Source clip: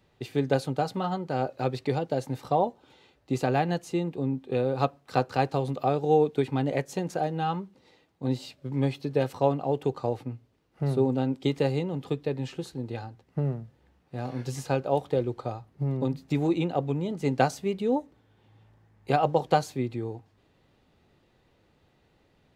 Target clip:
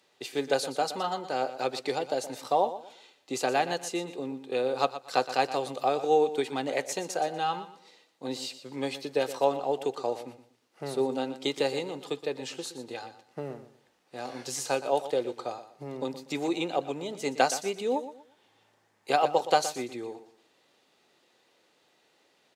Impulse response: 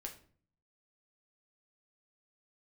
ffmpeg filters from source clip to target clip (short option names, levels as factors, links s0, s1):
-af "highpass=380,equalizer=f=7300:w=0.48:g=9.5,aecho=1:1:120|240|360:0.224|0.0604|0.0163"